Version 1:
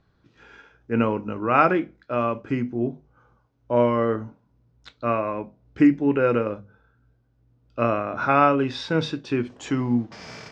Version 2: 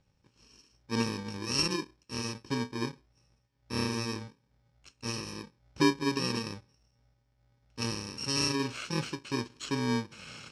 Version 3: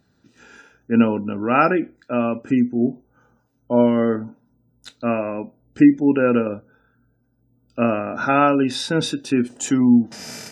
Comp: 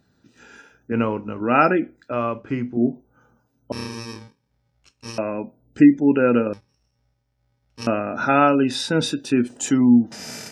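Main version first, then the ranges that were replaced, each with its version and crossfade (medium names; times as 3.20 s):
3
0.92–1.41 s: from 1
2.12–2.77 s: from 1
3.72–5.18 s: from 2
6.53–7.87 s: from 2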